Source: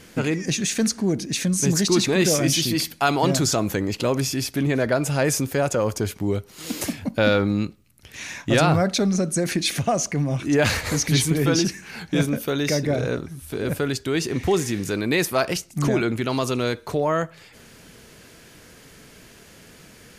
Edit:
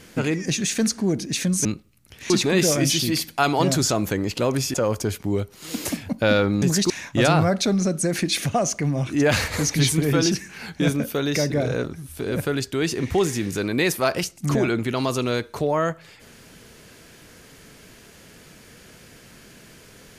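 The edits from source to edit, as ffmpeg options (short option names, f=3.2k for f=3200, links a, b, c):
-filter_complex "[0:a]asplit=6[a][b][c][d][e][f];[a]atrim=end=1.652[g];[b]atrim=start=7.578:end=8.232[h];[c]atrim=start=1.928:end=4.372[i];[d]atrim=start=5.698:end=7.582[j];[e]atrim=start=1.648:end=1.932[k];[f]atrim=start=8.228[l];[g][h]acrossfade=d=0.004:c1=hsin:c2=hsin[m];[m][i]acrossfade=d=0.004:c1=hsin:c2=hsin[n];[n][j]acrossfade=d=0.004:c1=hsin:c2=hsin[o];[o][k]acrossfade=d=0.004:c1=hsin:c2=hsin[p];[p][l]acrossfade=d=0.004:c1=hsin:c2=hsin"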